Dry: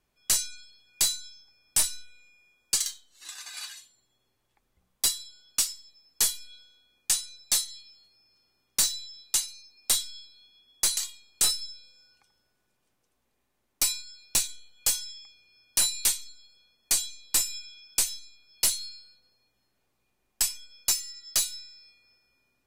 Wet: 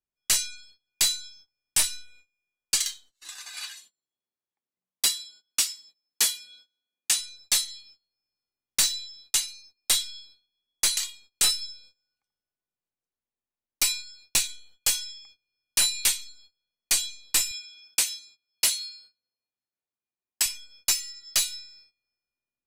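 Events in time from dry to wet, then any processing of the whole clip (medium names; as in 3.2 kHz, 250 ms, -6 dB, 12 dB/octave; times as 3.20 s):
3.65–7.18 s: high-pass 150 Hz 24 dB/octave
17.51–20.46 s: high-pass 200 Hz 6 dB/octave
whole clip: gate -53 dBFS, range -22 dB; dynamic bell 2.5 kHz, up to +7 dB, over -44 dBFS, Q 0.91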